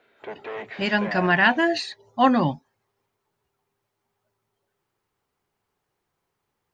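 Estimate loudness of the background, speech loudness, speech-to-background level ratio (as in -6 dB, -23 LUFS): -36.5 LUFS, -21.5 LUFS, 15.0 dB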